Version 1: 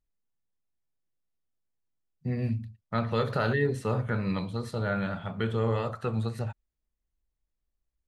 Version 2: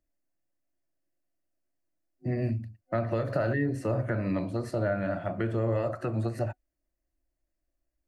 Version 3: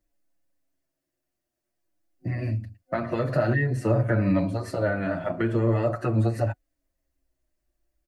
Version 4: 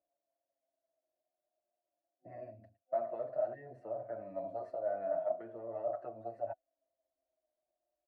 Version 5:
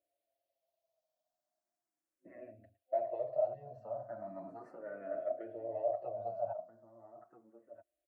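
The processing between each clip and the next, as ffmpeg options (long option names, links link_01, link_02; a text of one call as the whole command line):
ffmpeg -i in.wav -filter_complex "[0:a]acrossover=split=170[link_01][link_02];[link_02]acompressor=threshold=-32dB:ratio=6[link_03];[link_01][link_03]amix=inputs=2:normalize=0,superequalizer=6b=3.98:8b=3.55:11b=1.58:13b=0.355" out.wav
ffmpeg -i in.wav -filter_complex "[0:a]asplit=2[link_01][link_02];[link_02]adelay=6.7,afreqshift=-0.48[link_03];[link_01][link_03]amix=inputs=2:normalize=1,volume=8dB" out.wav
ffmpeg -i in.wav -af "areverse,acompressor=threshold=-32dB:ratio=10,areverse,bandpass=frequency=660:width_type=q:width=7.6:csg=0,volume=7.5dB" out.wav
ffmpeg -i in.wav -filter_complex "[0:a]asplit=2[link_01][link_02];[link_02]adelay=1283,volume=-9dB,highshelf=frequency=4000:gain=-28.9[link_03];[link_01][link_03]amix=inputs=2:normalize=0,asplit=2[link_04][link_05];[link_05]afreqshift=0.37[link_06];[link_04][link_06]amix=inputs=2:normalize=1,volume=2dB" out.wav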